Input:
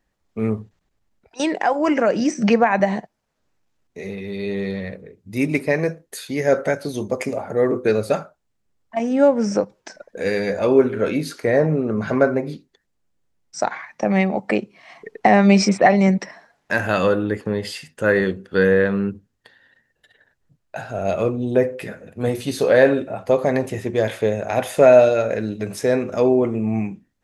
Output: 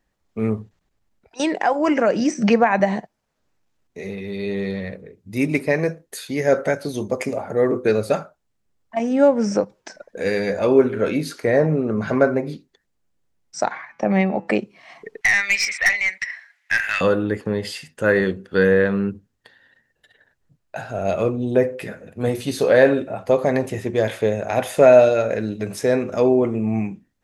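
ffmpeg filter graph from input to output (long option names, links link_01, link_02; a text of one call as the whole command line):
ffmpeg -i in.wav -filter_complex "[0:a]asettb=1/sr,asplit=3[link_01][link_02][link_03];[link_01]atrim=end=13.724[link_04];[link_02]atrim=start=13.72:end=14.48,asetpts=PTS-STARTPTS,afade=type=in:duration=0.004:curve=qsin,afade=type=out:start_time=0.756:duration=0.004:curve=qsin,lowpass=frequency=3200:poles=1,bandreject=frequency=166.3:width_type=h:width=4,bandreject=frequency=332.6:width_type=h:width=4,bandreject=frequency=498.9:width_type=h:width=4,bandreject=frequency=665.2:width_type=h:width=4,bandreject=frequency=831.5:width_type=h:width=4,bandreject=frequency=997.8:width_type=h:width=4,bandreject=frequency=1164.1:width_type=h:width=4,bandreject=frequency=1330.4:width_type=h:width=4,bandreject=frequency=1496.7:width_type=h:width=4,bandreject=frequency=1663:width_type=h:width=4,bandreject=frequency=1829.3:width_type=h:width=4,bandreject=frequency=1995.6:width_type=h:width=4,bandreject=frequency=2161.9:width_type=h:width=4,bandreject=frequency=2328.2:width_type=h:width=4,bandreject=frequency=2494.5:width_type=h:width=4,bandreject=frequency=2660.8:width_type=h:width=4,bandreject=frequency=2827.1:width_type=h:width=4,bandreject=frequency=2993.4:width_type=h:width=4,bandreject=frequency=3159.7:width_type=h:width=4[link_05];[link_03]atrim=start=14.476[link_06];[link_04][link_05]acrossfade=duration=0.004:curve1=hsin:curve2=qsin[link_07];[link_07][link_06]acrossfade=duration=0.004:curve1=qsin:curve2=hsin,asettb=1/sr,asplit=3[link_08][link_09][link_10];[link_08]atrim=end=15.214[link_11];[link_09]atrim=start=15.21:end=17.01,asetpts=PTS-STARTPTS,afade=type=in:duration=0.004:curve=qsin,afade=type=out:start_time=1.796:duration=0.004:curve=qsin,highpass=frequency=2000:width_type=q:width=4.8,aeval=exprs='(tanh(3.55*val(0)+0.15)-tanh(0.15))/3.55':channel_layout=same[link_12];[link_10]atrim=start=17.006[link_13];[link_11][link_12]acrossfade=duration=0.004:curve1=hsin:curve2=qsin[link_14];[link_14][link_13]acrossfade=duration=0.004:curve1=qsin:curve2=hsin" out.wav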